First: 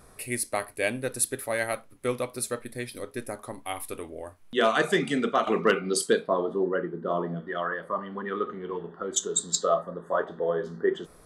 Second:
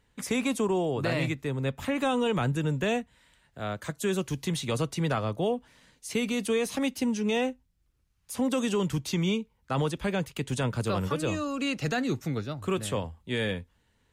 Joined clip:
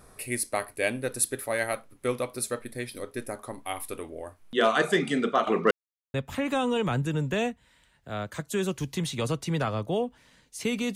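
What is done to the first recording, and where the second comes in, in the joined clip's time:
first
0:05.71–0:06.14: silence
0:06.14: continue with second from 0:01.64

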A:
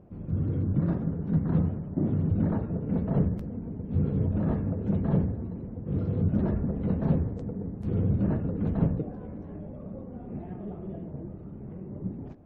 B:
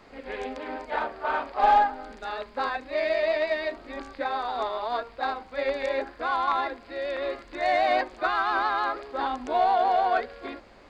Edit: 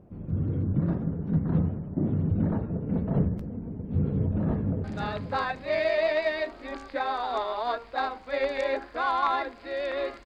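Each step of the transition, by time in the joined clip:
A
0:04.05–0:04.84: delay throw 530 ms, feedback 25%, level −8 dB
0:04.84: continue with B from 0:02.09

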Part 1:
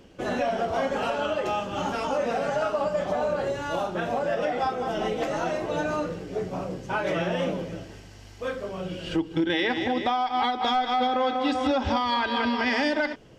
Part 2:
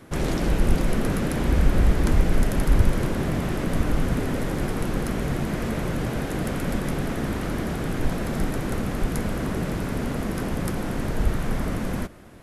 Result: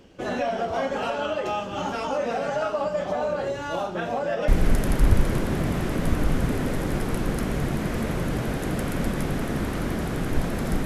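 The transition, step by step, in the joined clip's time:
part 1
0:04.48: continue with part 2 from 0:02.16

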